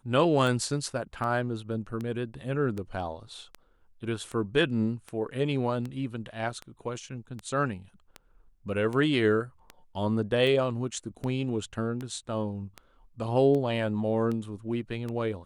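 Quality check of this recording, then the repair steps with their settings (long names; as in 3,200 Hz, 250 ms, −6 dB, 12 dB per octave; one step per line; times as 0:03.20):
scratch tick 78 rpm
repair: click removal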